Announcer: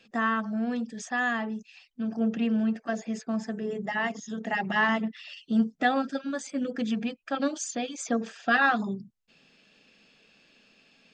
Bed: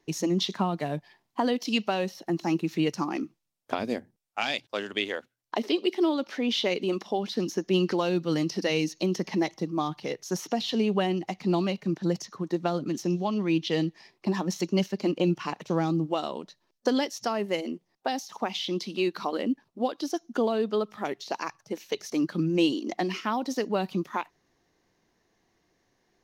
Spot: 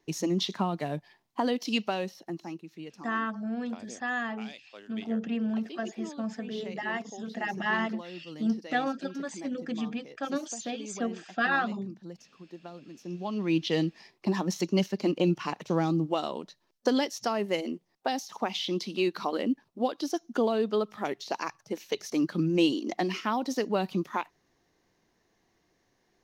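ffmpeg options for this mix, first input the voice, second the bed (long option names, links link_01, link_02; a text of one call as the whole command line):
ffmpeg -i stem1.wav -i stem2.wav -filter_complex "[0:a]adelay=2900,volume=-4dB[link_01];[1:a]volume=14.5dB,afade=type=out:start_time=1.82:duration=0.79:silence=0.177828,afade=type=in:start_time=13:duration=0.58:silence=0.149624[link_02];[link_01][link_02]amix=inputs=2:normalize=0" out.wav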